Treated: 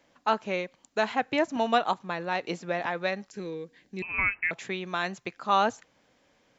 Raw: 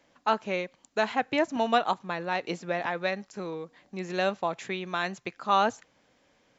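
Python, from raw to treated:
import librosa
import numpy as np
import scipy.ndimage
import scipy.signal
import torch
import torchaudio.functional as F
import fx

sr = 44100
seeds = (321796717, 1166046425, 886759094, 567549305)

y = fx.spec_box(x, sr, start_s=3.31, length_s=0.75, low_hz=520.0, high_hz=1500.0, gain_db=-10)
y = fx.freq_invert(y, sr, carrier_hz=2800, at=(4.02, 4.51))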